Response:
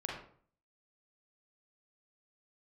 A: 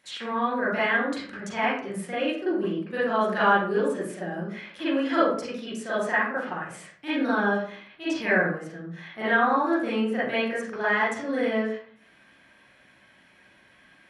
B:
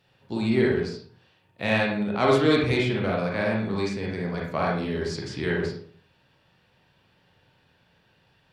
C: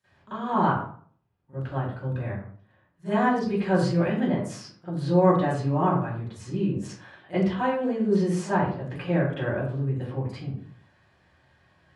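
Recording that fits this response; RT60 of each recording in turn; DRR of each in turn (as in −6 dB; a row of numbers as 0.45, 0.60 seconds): B; 0.50, 0.50, 0.50 seconds; −12.0, −3.0, −22.0 decibels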